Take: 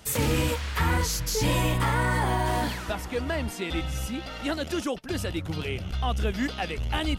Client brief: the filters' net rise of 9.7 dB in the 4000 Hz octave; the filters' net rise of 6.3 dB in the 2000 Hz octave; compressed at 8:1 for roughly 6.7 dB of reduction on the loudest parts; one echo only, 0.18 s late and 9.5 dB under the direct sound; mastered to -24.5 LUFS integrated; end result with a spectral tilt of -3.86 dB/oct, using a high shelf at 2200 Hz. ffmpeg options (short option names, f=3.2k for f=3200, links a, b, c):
-af "equalizer=f=2k:t=o:g=4,highshelf=f=2.2k:g=3.5,equalizer=f=4k:t=o:g=8,acompressor=threshold=-25dB:ratio=8,aecho=1:1:180:0.335,volume=4dB"